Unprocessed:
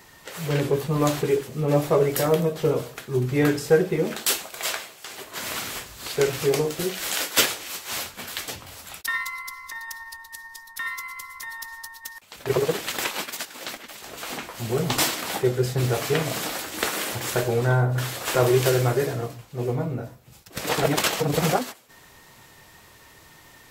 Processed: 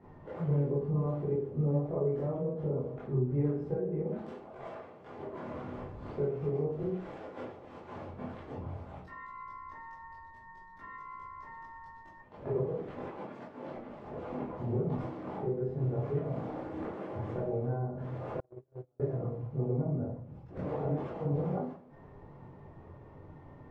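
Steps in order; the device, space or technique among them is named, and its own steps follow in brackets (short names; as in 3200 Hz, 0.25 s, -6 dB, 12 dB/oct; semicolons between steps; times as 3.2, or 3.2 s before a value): television next door (compressor 6:1, threshold -33 dBFS, peak gain reduction 19 dB; LPF 580 Hz 12 dB/oct; reverb RT60 0.40 s, pre-delay 15 ms, DRR -7.5 dB); 18.4–19 gate -23 dBFS, range -42 dB; gain -3.5 dB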